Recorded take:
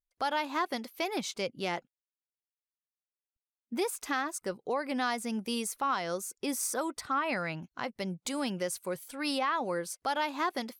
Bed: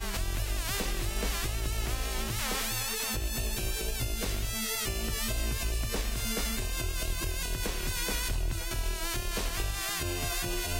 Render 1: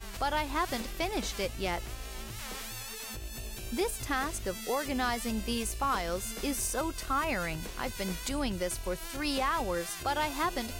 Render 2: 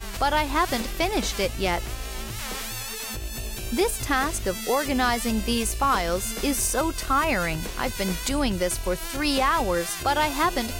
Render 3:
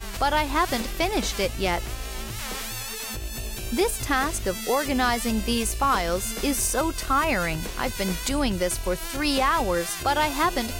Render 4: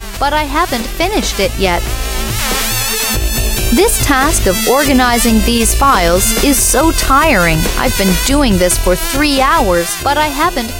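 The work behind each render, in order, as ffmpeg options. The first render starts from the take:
ffmpeg -i in.wav -i bed.wav -filter_complex "[1:a]volume=-8.5dB[link_01];[0:a][link_01]amix=inputs=2:normalize=0" out.wav
ffmpeg -i in.wav -af "volume=8dB" out.wav
ffmpeg -i in.wav -af anull out.wav
ffmpeg -i in.wav -af "dynaudnorm=framelen=420:gausssize=9:maxgain=11.5dB,alimiter=level_in=9.5dB:limit=-1dB:release=50:level=0:latency=1" out.wav

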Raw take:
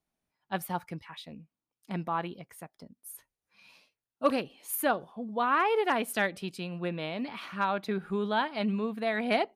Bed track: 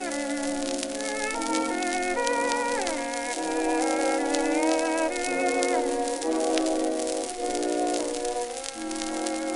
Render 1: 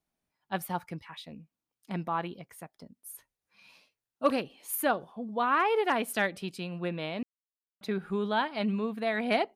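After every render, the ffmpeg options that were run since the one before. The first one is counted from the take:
ffmpeg -i in.wav -filter_complex "[0:a]asplit=3[link_01][link_02][link_03];[link_01]atrim=end=7.23,asetpts=PTS-STARTPTS,afade=type=out:start_time=7.226:duration=0.004:curve=hsin[link_04];[link_02]atrim=start=7.23:end=7.81,asetpts=PTS-STARTPTS,volume=0[link_05];[link_03]atrim=start=7.81,asetpts=PTS-STARTPTS,afade=type=in:duration=0.004:curve=hsin[link_06];[link_04][link_05][link_06]concat=n=3:v=0:a=1" out.wav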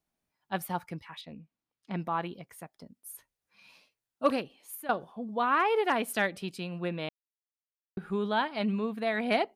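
ffmpeg -i in.wav -filter_complex "[0:a]asettb=1/sr,asplit=3[link_01][link_02][link_03];[link_01]atrim=end=1.214[link_04];[link_02]atrim=start=1.21:end=2,asetpts=PTS-STARTPTS,afade=type=in:duration=0.004:curve=qsin,afade=type=out:start_time=0.786:duration=0.004:curve=qsin,lowpass=4600[link_05];[link_03]atrim=start=1.996[link_06];[link_04][link_05]acrossfade=duration=0.004:curve1=hsin:curve2=qsin[link_07];[link_07][link_06]acrossfade=duration=0.004:curve1=qsin:curve2=hsin,asplit=4[link_08][link_09][link_10][link_11];[link_08]atrim=end=4.89,asetpts=PTS-STARTPTS,afade=type=out:start_time=4.29:duration=0.6:silence=0.141254[link_12];[link_09]atrim=start=4.89:end=7.09,asetpts=PTS-STARTPTS,afade=type=in:duration=0.004:curve=hsin:silence=0.141254,afade=type=out:start_time=2.196:duration=0.004:curve=hsin[link_13];[link_10]atrim=start=7.09:end=7.97,asetpts=PTS-STARTPTS,volume=0[link_14];[link_11]atrim=start=7.97,asetpts=PTS-STARTPTS,afade=type=in:duration=0.004:curve=hsin[link_15];[link_12][link_13][link_14][link_15]concat=n=4:v=0:a=1" out.wav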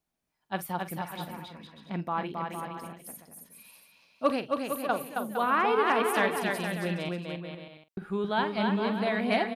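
ffmpeg -i in.wav -filter_complex "[0:a]asplit=2[link_01][link_02];[link_02]adelay=46,volume=-14dB[link_03];[link_01][link_03]amix=inputs=2:normalize=0,aecho=1:1:270|459|591.3|683.9|748.7:0.631|0.398|0.251|0.158|0.1" out.wav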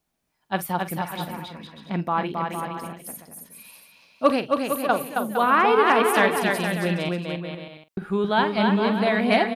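ffmpeg -i in.wav -af "volume=7dB" out.wav

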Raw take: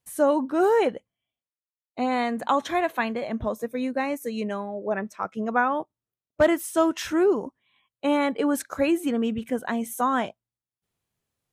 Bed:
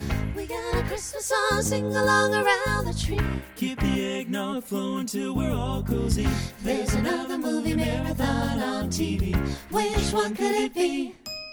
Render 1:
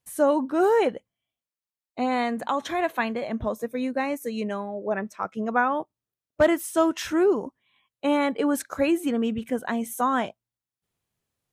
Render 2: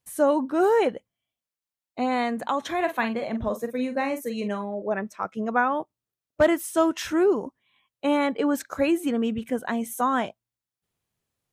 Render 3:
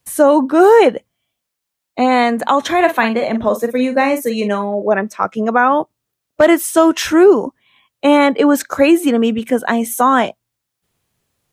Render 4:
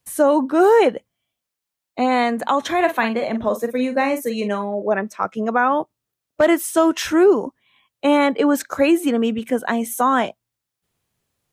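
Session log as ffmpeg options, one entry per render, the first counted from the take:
ffmpeg -i in.wav -filter_complex "[0:a]asplit=3[link_01][link_02][link_03];[link_01]afade=type=out:start_time=2.34:duration=0.02[link_04];[link_02]acompressor=threshold=-26dB:ratio=1.5:attack=3.2:release=140:knee=1:detection=peak,afade=type=in:start_time=2.34:duration=0.02,afade=type=out:start_time=2.78:duration=0.02[link_05];[link_03]afade=type=in:start_time=2.78:duration=0.02[link_06];[link_04][link_05][link_06]amix=inputs=3:normalize=0" out.wav
ffmpeg -i in.wav -filter_complex "[0:a]asettb=1/sr,asplit=3[link_01][link_02][link_03];[link_01]atrim=end=2.764[link_04];[link_02]atrim=start=2.76:end=4.82,asetpts=PTS-STARTPTS,afade=type=in:duration=0.004:curve=qsin,afade=type=out:start_time=2.056:duration=0.004:curve=qsin,asplit=2[link_05][link_06];[link_06]adelay=44,volume=-9dB[link_07];[link_05][link_07]amix=inputs=2:normalize=0,atrim=end_sample=90846[link_08];[link_03]atrim=start=4.816[link_09];[link_04][link_08]acrossfade=duration=0.004:curve1=hsin:curve2=qsin[link_10];[link_10][link_09]acrossfade=duration=0.004:curve1=qsin:curve2=hsin,asettb=1/sr,asplit=3[link_11][link_12][link_13];[link_11]atrim=end=8.274[link_14];[link_12]atrim=start=8.27:end=8.69,asetpts=PTS-STARTPTS,afade=type=in:duration=0.004:curve=qsin,afade=type=out:start_time=0.416:duration=0.004:curve=qsin,equalizer=frequency=10000:width_type=o:width=0.25:gain=-14[link_15];[link_13]atrim=start=8.686[link_16];[link_14][link_15]acrossfade=duration=0.004:curve1=hsin:curve2=qsin[link_17];[link_17][link_16]acrossfade=duration=0.004:curve1=qsin:curve2=hsin" out.wav
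ffmpeg -i in.wav -filter_complex "[0:a]acrossover=split=190|950[link_01][link_02][link_03];[link_01]acompressor=threshold=-48dB:ratio=6[link_04];[link_04][link_02][link_03]amix=inputs=3:normalize=0,alimiter=level_in=12.5dB:limit=-1dB:release=50:level=0:latency=1" out.wav
ffmpeg -i in.wav -af "volume=-5dB" out.wav

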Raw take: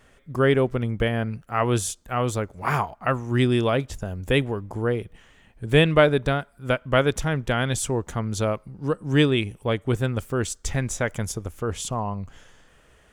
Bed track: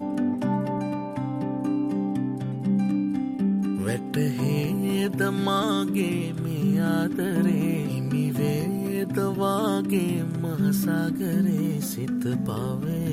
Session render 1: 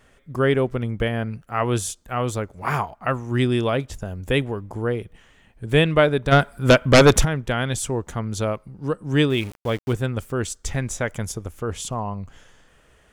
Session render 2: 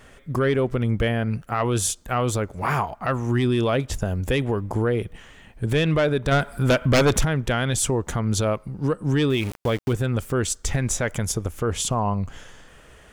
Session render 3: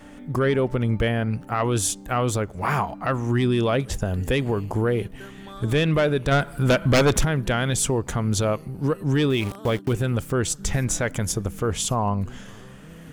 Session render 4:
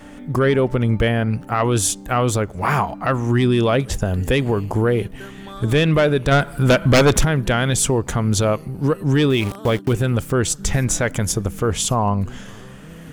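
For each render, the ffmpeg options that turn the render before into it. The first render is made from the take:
ffmpeg -i in.wav -filter_complex "[0:a]asplit=3[link_01][link_02][link_03];[link_01]afade=type=out:start_time=6.31:duration=0.02[link_04];[link_02]aeval=exprs='0.501*sin(PI/2*2.82*val(0)/0.501)':channel_layout=same,afade=type=in:start_time=6.31:duration=0.02,afade=type=out:start_time=7.24:duration=0.02[link_05];[link_03]afade=type=in:start_time=7.24:duration=0.02[link_06];[link_04][link_05][link_06]amix=inputs=3:normalize=0,asettb=1/sr,asplit=3[link_07][link_08][link_09];[link_07]atrim=end=9.304[link_10];[link_08]atrim=start=9.3:end=9.93,asetpts=PTS-STARTPTS,afade=type=in:duration=0.004:curve=qsin,afade=type=out:start_time=0.626:duration=0.004:curve=qsin,aeval=exprs='val(0)*gte(abs(val(0)),0.0178)':channel_layout=same[link_11];[link_09]atrim=start=9.926[link_12];[link_10][link_11]acrossfade=duration=0.004:curve1=hsin:curve2=qsin[link_13];[link_13][link_12]acrossfade=duration=0.004:curve1=qsin:curve2=hsin" out.wav
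ffmpeg -i in.wav -af "acontrast=89,alimiter=limit=-13dB:level=0:latency=1:release=134" out.wav
ffmpeg -i in.wav -i bed.wav -filter_complex "[1:a]volume=-17dB[link_01];[0:a][link_01]amix=inputs=2:normalize=0" out.wav
ffmpeg -i in.wav -af "volume=4.5dB" out.wav

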